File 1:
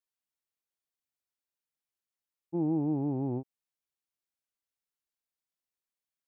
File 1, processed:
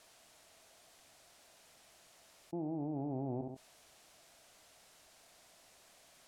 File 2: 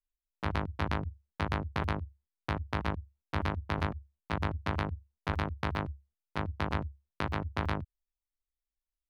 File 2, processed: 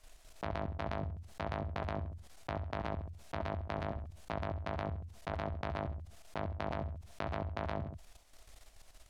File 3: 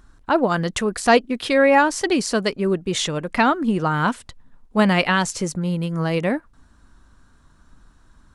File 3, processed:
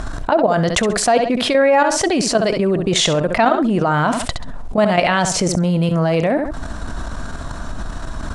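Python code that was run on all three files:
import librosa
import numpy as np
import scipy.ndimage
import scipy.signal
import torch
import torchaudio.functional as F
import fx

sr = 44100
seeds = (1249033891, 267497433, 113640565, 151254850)

y = scipy.signal.sosfilt(scipy.signal.butter(2, 9400.0, 'lowpass', fs=sr, output='sos'), x)
y = fx.peak_eq(y, sr, hz=660.0, db=11.0, octaves=0.44)
y = fx.level_steps(y, sr, step_db=13)
y = fx.echo_feedback(y, sr, ms=67, feedback_pct=20, wet_db=-13.0)
y = fx.env_flatten(y, sr, amount_pct=70)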